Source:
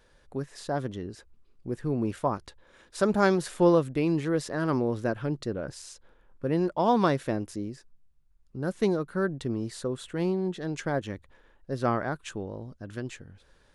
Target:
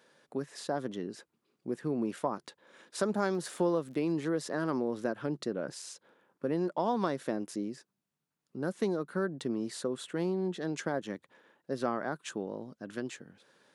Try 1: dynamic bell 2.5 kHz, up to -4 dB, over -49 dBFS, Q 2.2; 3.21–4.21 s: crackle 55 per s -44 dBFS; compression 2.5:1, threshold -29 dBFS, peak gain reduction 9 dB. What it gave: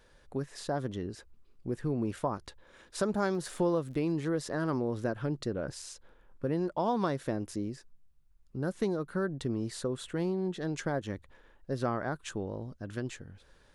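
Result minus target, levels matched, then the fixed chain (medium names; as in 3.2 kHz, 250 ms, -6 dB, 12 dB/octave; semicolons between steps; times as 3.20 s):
125 Hz band +5.0 dB
dynamic bell 2.5 kHz, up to -4 dB, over -49 dBFS, Q 2.2; high-pass 170 Hz 24 dB/octave; 3.21–4.21 s: crackle 55 per s -44 dBFS; compression 2.5:1, threshold -29 dBFS, peak gain reduction 9 dB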